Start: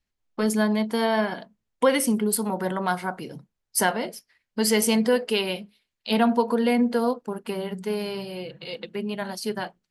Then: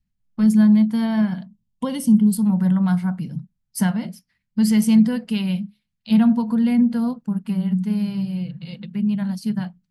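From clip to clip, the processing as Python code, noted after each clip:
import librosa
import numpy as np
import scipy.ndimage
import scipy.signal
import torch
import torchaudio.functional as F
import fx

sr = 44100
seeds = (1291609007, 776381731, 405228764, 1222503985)

y = fx.low_shelf_res(x, sr, hz=270.0, db=13.5, q=3.0)
y = fx.spec_box(y, sr, start_s=1.48, length_s=0.93, low_hz=1100.0, high_hz=2700.0, gain_db=-9)
y = y * librosa.db_to_amplitude(-6.0)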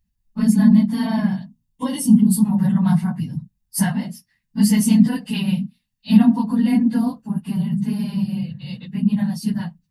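y = fx.phase_scramble(x, sr, seeds[0], window_ms=50)
y = fx.high_shelf(y, sr, hz=5300.0, db=7.0)
y = y + 0.38 * np.pad(y, (int(1.1 * sr / 1000.0), 0))[:len(y)]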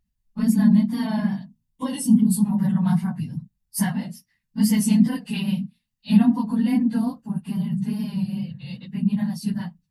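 y = fx.vibrato(x, sr, rate_hz=2.4, depth_cents=49.0)
y = y * librosa.db_to_amplitude(-3.5)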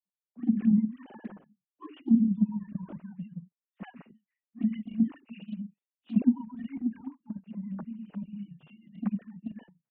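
y = fx.sine_speech(x, sr)
y = fx.env_flanger(y, sr, rest_ms=10.2, full_db=-11.0)
y = y * librosa.db_to_amplitude(-8.0)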